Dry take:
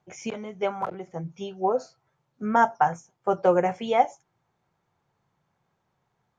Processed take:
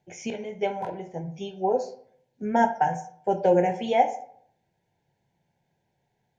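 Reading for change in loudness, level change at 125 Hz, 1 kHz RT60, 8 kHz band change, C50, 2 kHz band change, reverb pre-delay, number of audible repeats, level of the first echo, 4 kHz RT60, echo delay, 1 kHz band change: −0.5 dB, +1.5 dB, 0.60 s, can't be measured, 12.0 dB, −2.0 dB, 9 ms, no echo audible, no echo audible, 0.35 s, no echo audible, −1.0 dB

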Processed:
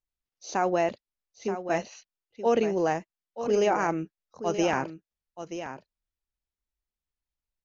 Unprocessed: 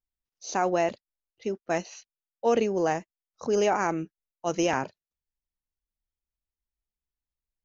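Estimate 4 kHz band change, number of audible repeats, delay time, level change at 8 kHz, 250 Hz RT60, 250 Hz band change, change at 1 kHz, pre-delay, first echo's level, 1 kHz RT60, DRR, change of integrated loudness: −1.0 dB, 1, 929 ms, can't be measured, no reverb audible, +0.5 dB, 0.0 dB, no reverb audible, −10.5 dB, no reverb audible, no reverb audible, −0.5 dB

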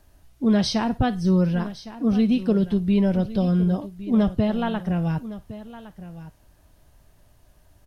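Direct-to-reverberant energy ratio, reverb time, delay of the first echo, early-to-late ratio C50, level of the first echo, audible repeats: no reverb audible, no reverb audible, 1,111 ms, no reverb audible, −15.5 dB, 1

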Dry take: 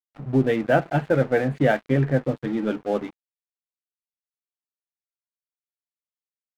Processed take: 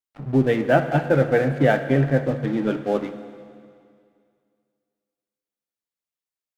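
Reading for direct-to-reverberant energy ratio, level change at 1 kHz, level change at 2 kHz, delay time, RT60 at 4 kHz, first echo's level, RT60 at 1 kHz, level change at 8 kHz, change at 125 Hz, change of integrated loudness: 9.0 dB, +2.0 dB, +2.0 dB, no echo audible, 2.2 s, no echo audible, 2.2 s, can't be measured, +2.0 dB, +2.0 dB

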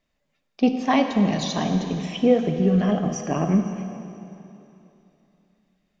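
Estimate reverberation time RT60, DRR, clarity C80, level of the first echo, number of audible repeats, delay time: 3.0 s, 5.5 dB, 7.5 dB, no echo audible, no echo audible, no echo audible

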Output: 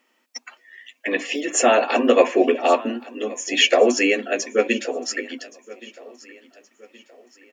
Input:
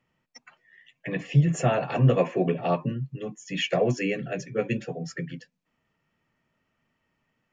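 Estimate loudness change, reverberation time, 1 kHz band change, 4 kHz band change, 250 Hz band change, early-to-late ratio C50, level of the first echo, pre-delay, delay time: +6.5 dB, no reverb audible, +9.0 dB, +13.0 dB, +4.5 dB, no reverb audible, −20.5 dB, no reverb audible, 1,122 ms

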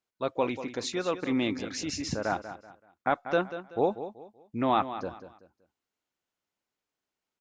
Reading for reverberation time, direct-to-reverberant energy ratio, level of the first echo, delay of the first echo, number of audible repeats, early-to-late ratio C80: no reverb audible, no reverb audible, −12.0 dB, 190 ms, 3, no reverb audible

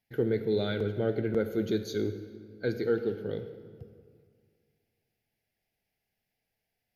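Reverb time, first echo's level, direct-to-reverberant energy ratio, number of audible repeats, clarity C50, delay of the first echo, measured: 2.1 s, no echo audible, 10.0 dB, no echo audible, 10.5 dB, no echo audible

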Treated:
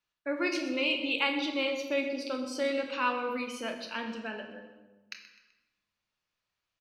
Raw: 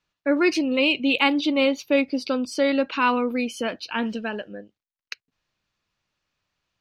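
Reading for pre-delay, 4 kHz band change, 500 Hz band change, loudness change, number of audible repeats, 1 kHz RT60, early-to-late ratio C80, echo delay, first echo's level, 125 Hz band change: 23 ms, −6.5 dB, −9.0 dB, −9.0 dB, 2, 1.1 s, 8.0 dB, 127 ms, −15.0 dB, can't be measured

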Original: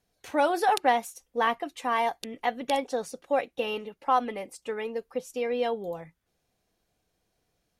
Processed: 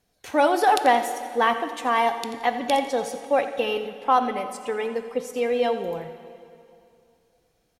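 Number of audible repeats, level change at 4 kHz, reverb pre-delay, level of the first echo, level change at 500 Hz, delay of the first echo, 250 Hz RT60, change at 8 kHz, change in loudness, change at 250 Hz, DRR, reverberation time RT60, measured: 1, +5.0 dB, 6 ms, −14.5 dB, +5.5 dB, 87 ms, 2.7 s, +5.0 dB, +5.0 dB, +5.5 dB, 8.5 dB, 2.6 s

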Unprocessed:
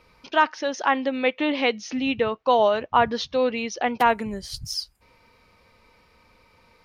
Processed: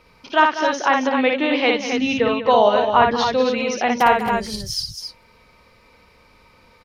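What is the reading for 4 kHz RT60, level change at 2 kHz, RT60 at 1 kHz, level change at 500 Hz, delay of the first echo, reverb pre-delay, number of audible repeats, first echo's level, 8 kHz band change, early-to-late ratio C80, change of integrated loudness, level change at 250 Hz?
no reverb audible, +5.5 dB, no reverb audible, +5.0 dB, 58 ms, no reverb audible, 3, −4.0 dB, +5.0 dB, no reverb audible, +5.0 dB, +5.0 dB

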